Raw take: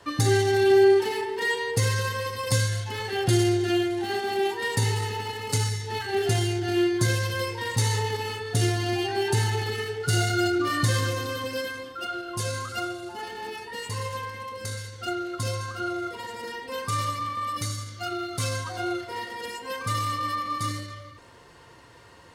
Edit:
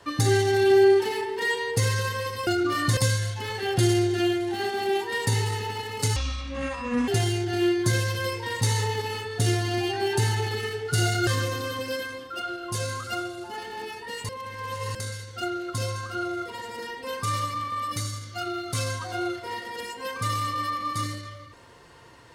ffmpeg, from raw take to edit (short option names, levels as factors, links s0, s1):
-filter_complex "[0:a]asplit=8[s0][s1][s2][s3][s4][s5][s6][s7];[s0]atrim=end=2.472[s8];[s1]atrim=start=10.418:end=10.922[s9];[s2]atrim=start=2.468:end=5.664[s10];[s3]atrim=start=5.66:end=6.23,asetpts=PTS-STARTPTS,asetrate=27342,aresample=44100[s11];[s4]atrim=start=6.226:end=10.422[s12];[s5]atrim=start=10.918:end=13.942[s13];[s6]atrim=start=13.938:end=14.602,asetpts=PTS-STARTPTS,areverse[s14];[s7]atrim=start=14.598[s15];[s8][s9]acrossfade=d=0.004:c1=hsin:c2=hsin[s16];[s16][s10]acrossfade=d=0.004:c1=hsin:c2=hsin[s17];[s17][s11]acrossfade=d=0.004:c1=hsin:c2=hsin[s18];[s18][s12]acrossfade=d=0.004:c1=hsin:c2=hsin[s19];[s19][s13]acrossfade=d=0.004:c1=hsin:c2=hsin[s20];[s20][s14]acrossfade=d=0.004:c1=hsin:c2=hsin[s21];[s21][s15]acrossfade=d=0.004:c1=hsin:c2=hsin"